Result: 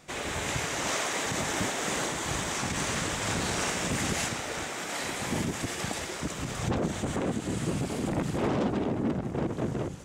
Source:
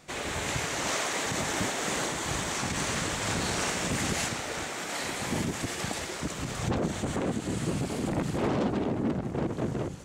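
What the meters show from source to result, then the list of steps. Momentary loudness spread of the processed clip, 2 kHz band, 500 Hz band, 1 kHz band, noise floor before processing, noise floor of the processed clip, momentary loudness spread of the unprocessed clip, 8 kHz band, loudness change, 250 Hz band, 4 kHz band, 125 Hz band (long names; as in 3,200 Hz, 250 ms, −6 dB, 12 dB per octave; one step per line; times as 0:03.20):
4 LU, 0.0 dB, 0.0 dB, 0.0 dB, −37 dBFS, −37 dBFS, 5 LU, 0.0 dB, 0.0 dB, 0.0 dB, −0.5 dB, 0.0 dB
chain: notch filter 4,300 Hz, Q 21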